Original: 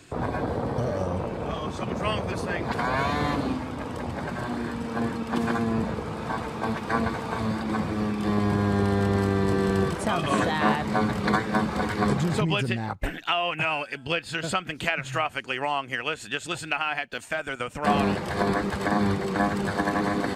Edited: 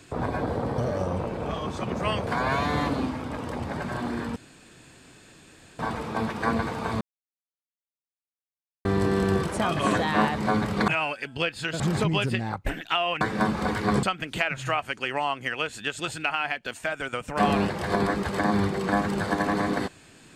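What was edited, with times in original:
0:02.27–0:02.74: remove
0:04.83–0:06.26: fill with room tone
0:07.48–0:09.32: silence
0:11.35–0:12.17: swap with 0:13.58–0:14.50

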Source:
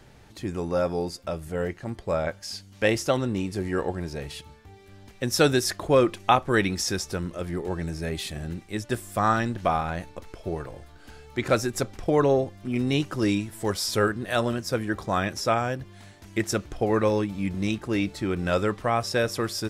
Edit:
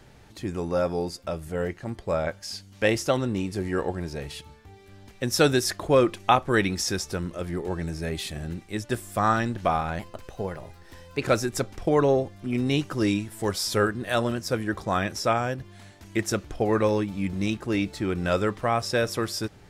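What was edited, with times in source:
0:09.99–0:11.44: play speed 117%

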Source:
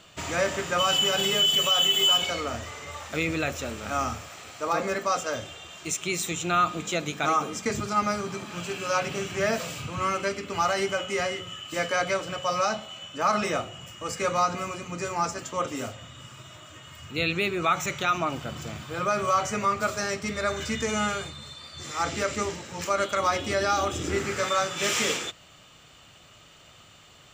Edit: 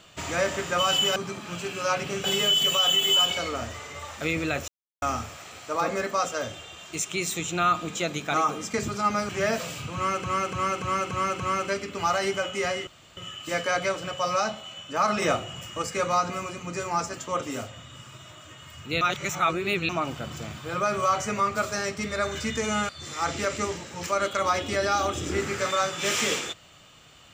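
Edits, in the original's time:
0:03.60–0:03.94: silence
0:08.21–0:09.29: move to 0:01.16
0:09.95–0:10.24: repeat, 6 plays
0:11.42: splice in room tone 0.30 s
0:13.47–0:14.07: clip gain +4 dB
0:17.26–0:18.14: reverse
0:21.14–0:21.67: remove

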